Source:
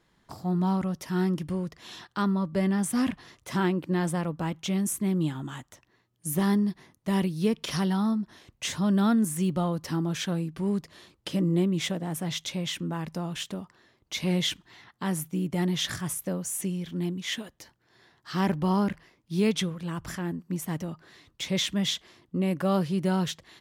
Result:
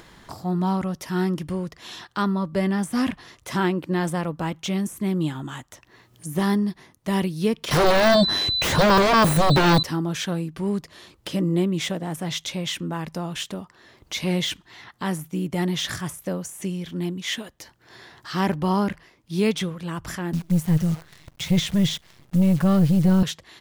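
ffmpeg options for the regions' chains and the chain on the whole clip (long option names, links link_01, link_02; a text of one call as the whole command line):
ffmpeg -i in.wav -filter_complex "[0:a]asettb=1/sr,asplit=3[link_01][link_02][link_03];[link_01]atrim=end=7.714[link_04];[link_02]atrim=start=7.71:end=9.83,asetpts=PTS-STARTPTS,afade=type=in:duration=0.004:curve=qsin,afade=type=out:start_time=2.116:duration=0.004:curve=qsin,aeval=exprs='val(0)+0.00631*sin(2*PI*4000*n/s)':channel_layout=same,aeval=exprs='0.178*sin(PI/2*5.62*val(0)/0.178)':channel_layout=same[link_05];[link_03]atrim=start=9.826[link_06];[link_04][link_05]acrossfade=duration=0.004:curve1=hsin:curve2=qsin[link_07];[link_07][link_06]acrossfade=duration=0.004:curve1=qsin:curve2=hsin,asettb=1/sr,asplit=3[link_08][link_09][link_10];[link_08]atrim=end=20.334[link_11];[link_09]atrim=start=20.33:end=23.23,asetpts=PTS-STARTPTS,afade=type=in:duration=0.004:curve=qsin,afade=type=out:start_time=2.896:duration=0.004:curve=qsin,lowshelf=frequency=210:width_type=q:width=3:gain=8.5,acrusher=bits=8:dc=4:mix=0:aa=0.000001,aeval=exprs='(tanh(5.01*val(0)+0.3)-tanh(0.3))/5.01':channel_layout=same[link_12];[link_10]atrim=start=23.226[link_13];[link_11][link_12]acrossfade=duration=0.004:curve1=hsin:curve2=qsin[link_14];[link_14][link_13]acrossfade=duration=0.004:curve1=qsin:curve2=hsin,deesser=0.7,equalizer=frequency=180:width_type=o:width=1.8:gain=-3,acompressor=mode=upward:threshold=-41dB:ratio=2.5,volume=5dB" out.wav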